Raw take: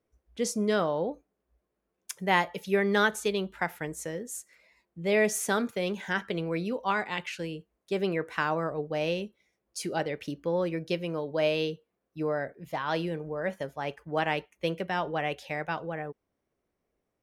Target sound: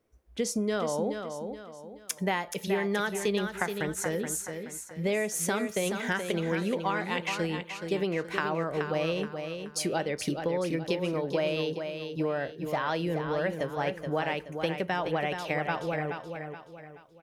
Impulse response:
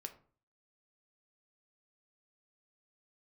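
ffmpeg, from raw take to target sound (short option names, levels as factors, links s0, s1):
-af "acompressor=threshold=0.0282:ratio=10,aecho=1:1:426|852|1278|1704:0.447|0.17|0.0645|0.0245,volume=1.88"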